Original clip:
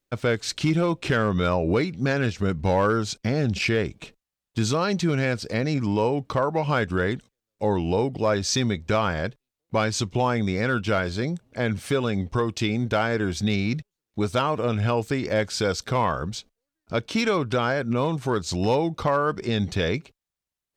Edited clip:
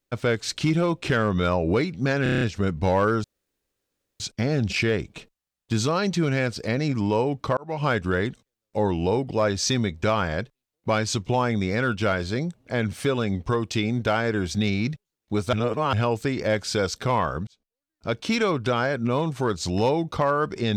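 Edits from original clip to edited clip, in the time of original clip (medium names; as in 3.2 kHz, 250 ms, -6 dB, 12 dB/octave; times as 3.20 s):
2.23 s: stutter 0.03 s, 7 plays
3.06 s: insert room tone 0.96 s
6.43–6.72 s: fade in
14.39–14.79 s: reverse
16.33–17.05 s: fade in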